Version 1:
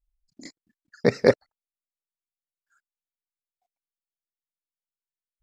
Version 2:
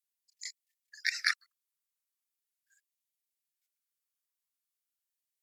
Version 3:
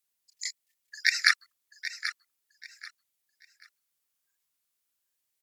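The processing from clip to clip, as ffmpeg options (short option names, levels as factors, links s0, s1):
-af "aemphasis=mode=production:type=cd,afftfilt=real='re*gte(b*sr/1024,900*pow(1800/900,0.5+0.5*sin(2*PI*0.4*pts/sr)))':imag='im*gte(b*sr/1024,900*pow(1800/900,0.5+0.5*sin(2*PI*0.4*pts/sr)))':win_size=1024:overlap=0.75"
-af "aecho=1:1:785|1570|2355:0.266|0.0692|0.018,volume=2.37"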